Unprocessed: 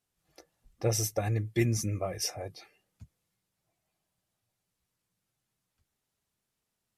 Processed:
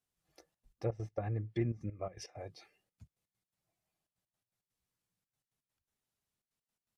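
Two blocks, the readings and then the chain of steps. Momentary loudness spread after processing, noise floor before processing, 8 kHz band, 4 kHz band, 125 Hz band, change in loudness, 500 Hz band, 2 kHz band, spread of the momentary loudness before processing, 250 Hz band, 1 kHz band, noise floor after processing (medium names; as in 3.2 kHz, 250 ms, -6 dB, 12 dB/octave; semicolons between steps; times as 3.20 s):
13 LU, -84 dBFS, -23.5 dB, -17.0 dB, -7.5 dB, -8.5 dB, -7.0 dB, -13.0 dB, 6 LU, -7.0 dB, -7.5 dB, under -85 dBFS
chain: low-pass that closes with the level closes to 1.3 kHz, closed at -26 dBFS; trance gate "xxxxxx.x.x.x." 166 bpm -12 dB; trim -6.5 dB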